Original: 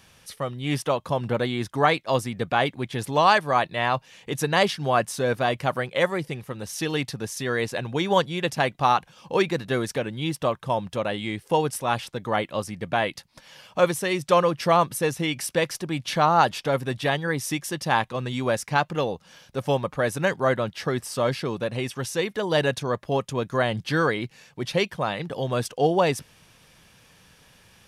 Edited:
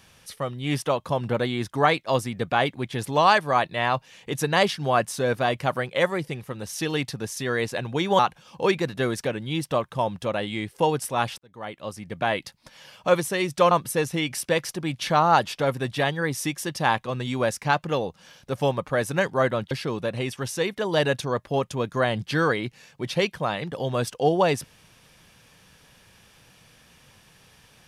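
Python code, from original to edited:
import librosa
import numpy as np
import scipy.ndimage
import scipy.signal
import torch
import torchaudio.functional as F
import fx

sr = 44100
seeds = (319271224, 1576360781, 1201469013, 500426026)

y = fx.edit(x, sr, fx.cut(start_s=8.19, length_s=0.71),
    fx.fade_in_span(start_s=12.09, length_s=0.98),
    fx.cut(start_s=14.42, length_s=0.35),
    fx.cut(start_s=20.77, length_s=0.52), tone=tone)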